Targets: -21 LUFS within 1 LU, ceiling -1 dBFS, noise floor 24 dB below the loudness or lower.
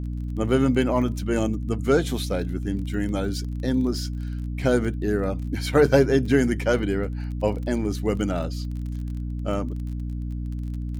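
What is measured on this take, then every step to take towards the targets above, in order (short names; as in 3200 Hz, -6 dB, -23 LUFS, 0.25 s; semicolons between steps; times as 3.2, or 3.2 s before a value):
ticks 25/s; hum 60 Hz; harmonics up to 300 Hz; hum level -27 dBFS; loudness -25.0 LUFS; peak -6.0 dBFS; loudness target -21.0 LUFS
-> de-click; notches 60/120/180/240/300 Hz; gain +4 dB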